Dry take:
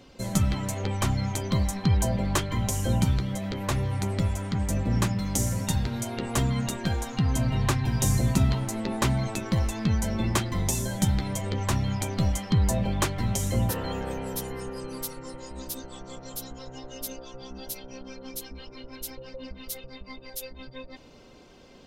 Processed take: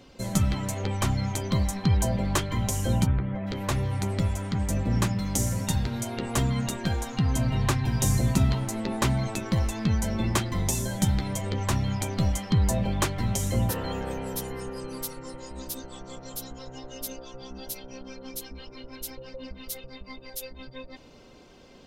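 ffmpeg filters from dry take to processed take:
-filter_complex "[0:a]asplit=3[a][b][c];[a]afade=t=out:st=3.05:d=0.02[d];[b]lowpass=f=2.2k:w=0.5412,lowpass=f=2.2k:w=1.3066,afade=t=in:st=3.05:d=0.02,afade=t=out:st=3.46:d=0.02[e];[c]afade=t=in:st=3.46:d=0.02[f];[d][e][f]amix=inputs=3:normalize=0"

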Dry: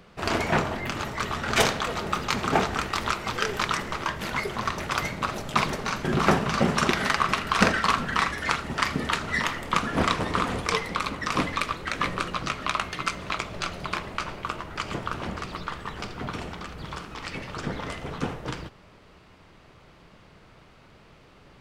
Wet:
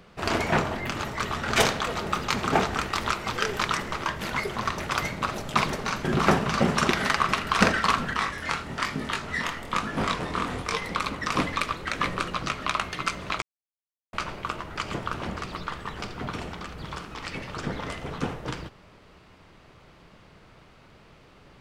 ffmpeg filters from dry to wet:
-filter_complex "[0:a]asettb=1/sr,asplit=3[a][b][c];[a]atrim=end=8.134[d];[b]atrim=start=8.13:end=10.82,asetpts=PTS-STARTPTS,afade=t=in:d=0.004:c=qsin,afade=t=out:st=2.686:d=0.004:c=qsin,flanger=delay=19:depth=5.8:speed=1.1[e];[c]atrim=start=10.816[f];[d][e]acrossfade=d=0.004:c1=hsin:c2=qsin[g];[g][f]acrossfade=d=0.004:c1=qsin:c2=hsin,asplit=3[h][i][j];[h]atrim=end=13.42,asetpts=PTS-STARTPTS,afade=t=out:st=13.416:d=0.004:c=hsin[k];[i]atrim=start=13.42:end=14.13,asetpts=PTS-STARTPTS,volume=0[l];[j]atrim=start=14.13,asetpts=PTS-STARTPTS,afade=t=in:d=0.004:c=hsin[m];[k][l][m]concat=n=3:v=0:a=1"

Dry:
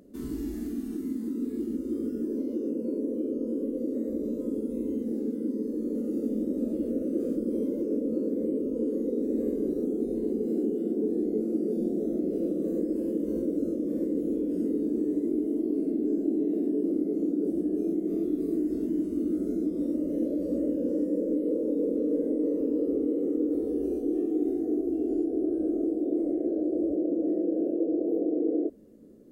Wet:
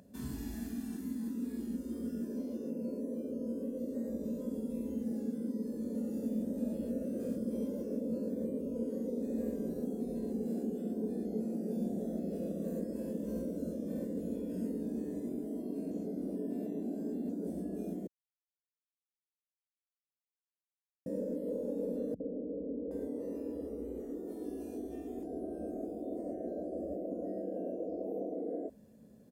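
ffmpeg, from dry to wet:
-filter_complex "[0:a]asettb=1/sr,asplit=3[a][b][c];[a]atrim=end=22.144[d];[b]atrim=start=22.14:end=25.23,asetpts=PTS-STARTPTS,afade=t=in:d=0.004:c=qsin,afade=t=out:st=3.086:d=0.004:c=qsin,acrossover=split=180|610[e][f][g];[f]adelay=60[h];[g]adelay=770[i];[e][h][i]amix=inputs=3:normalize=0,atrim=end_sample=136269[j];[c]atrim=start=25.226[k];[d][j]acrossfade=d=0.004:c1=hsin:c2=qsin[l];[l][k]acrossfade=d=0.004:c1=qsin:c2=hsin,asplit=5[m][n][o][p][q];[m]atrim=end=15.912[r];[n]atrim=start=15.908:end=17.292,asetpts=PTS-STARTPTS,areverse[s];[o]atrim=start=17.288:end=18.07,asetpts=PTS-STARTPTS,afade=t=out:st=0.778:d=0.004:c=hsin[t];[p]atrim=start=18.07:end=21.06,asetpts=PTS-STARTPTS,volume=0[u];[q]atrim=start=21.06,asetpts=PTS-STARTPTS,afade=t=in:d=0.004:c=hsin[v];[r][s]acrossfade=d=0.004:c1=hsin:c2=hsin[w];[t][u][v]concat=n=3:v=0:a=1[x];[w][x]acrossfade=d=0.004:c1=hsin:c2=hsin,highpass=76,equalizer=f=320:w=3:g=-15,aecho=1:1:1.2:0.48"

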